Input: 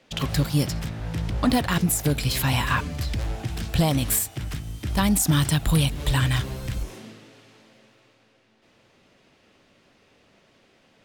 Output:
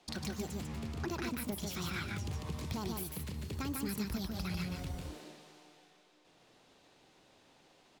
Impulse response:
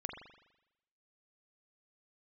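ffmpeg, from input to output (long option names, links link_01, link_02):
-af "acompressor=threshold=-33dB:ratio=3,highshelf=frequency=12000:gain=-8.5,asetrate=60858,aresample=44100,aecho=1:1:147:0.668,volume=-6.5dB"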